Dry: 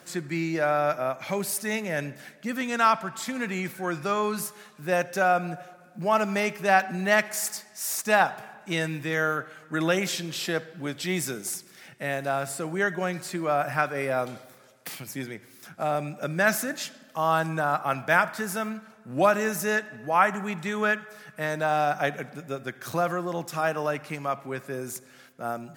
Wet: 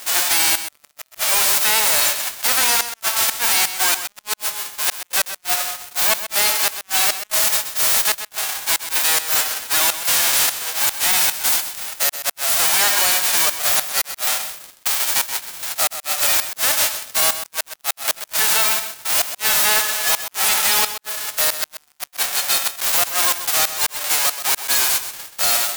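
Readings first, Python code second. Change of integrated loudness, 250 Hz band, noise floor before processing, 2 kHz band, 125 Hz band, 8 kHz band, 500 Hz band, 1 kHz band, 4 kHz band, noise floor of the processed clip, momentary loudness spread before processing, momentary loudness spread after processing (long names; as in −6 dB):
+10.5 dB, −11.5 dB, −53 dBFS, +5.0 dB, below −10 dB, +19.0 dB, −5.0 dB, +1.0 dB, +18.5 dB, −57 dBFS, 13 LU, 9 LU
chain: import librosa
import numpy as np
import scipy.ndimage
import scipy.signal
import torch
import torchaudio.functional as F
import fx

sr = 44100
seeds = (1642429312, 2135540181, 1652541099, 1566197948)

p1 = fx.envelope_flatten(x, sr, power=0.1)
p2 = scipy.signal.sosfilt(scipy.signal.butter(4, 550.0, 'highpass', fs=sr, output='sos'), p1)
p3 = fx.over_compress(p2, sr, threshold_db=-32.0, ratio=-0.5)
p4 = p2 + (p3 * 10.0 ** (-2.5 / 20.0))
p5 = fx.gate_flip(p4, sr, shuts_db=-11.0, range_db=-32)
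p6 = fx.leveller(p5, sr, passes=5)
p7 = p6 + fx.echo_single(p6, sr, ms=129, db=-11.0, dry=0)
y = p7 * 10.0 ** (-4.0 / 20.0)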